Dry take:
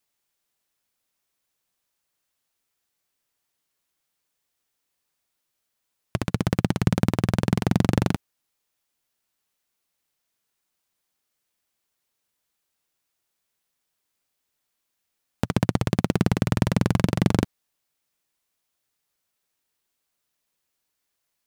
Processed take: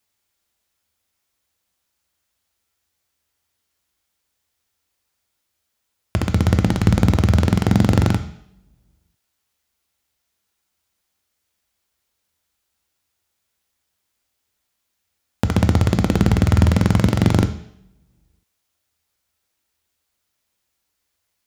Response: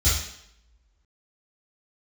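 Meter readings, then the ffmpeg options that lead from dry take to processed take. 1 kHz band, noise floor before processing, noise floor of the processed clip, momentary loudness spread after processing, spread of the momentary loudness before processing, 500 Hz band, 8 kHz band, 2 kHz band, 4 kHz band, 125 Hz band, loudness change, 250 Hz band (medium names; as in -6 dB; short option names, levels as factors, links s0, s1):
+4.5 dB, -79 dBFS, -75 dBFS, 9 LU, 7 LU, +4.0 dB, +4.0 dB, +4.5 dB, +4.5 dB, +7.5 dB, +6.0 dB, +5.0 dB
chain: -filter_complex "[0:a]asplit=2[s0][s1];[1:a]atrim=start_sample=2205,lowshelf=f=140:g=-8,highshelf=f=11000:g=-12[s2];[s1][s2]afir=irnorm=-1:irlink=0,volume=0.1[s3];[s0][s3]amix=inputs=2:normalize=0,volume=1.41"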